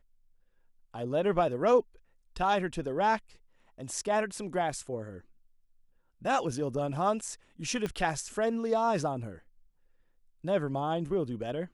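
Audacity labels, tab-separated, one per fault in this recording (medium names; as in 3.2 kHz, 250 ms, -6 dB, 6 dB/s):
7.860000	7.860000	pop -20 dBFS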